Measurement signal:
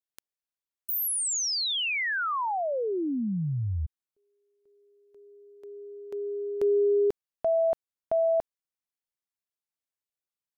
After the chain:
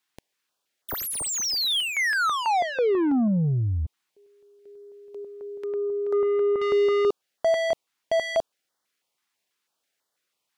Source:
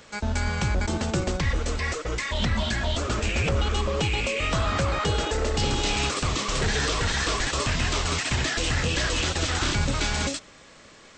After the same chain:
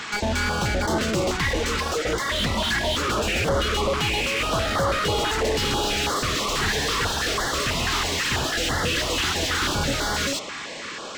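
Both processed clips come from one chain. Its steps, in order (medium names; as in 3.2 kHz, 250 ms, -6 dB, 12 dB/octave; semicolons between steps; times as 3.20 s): dynamic bell 2.4 kHz, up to -4 dB, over -42 dBFS, Q 4; overdrive pedal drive 29 dB, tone 2.6 kHz, clips at -14 dBFS; step-sequenced notch 6.1 Hz 550–2500 Hz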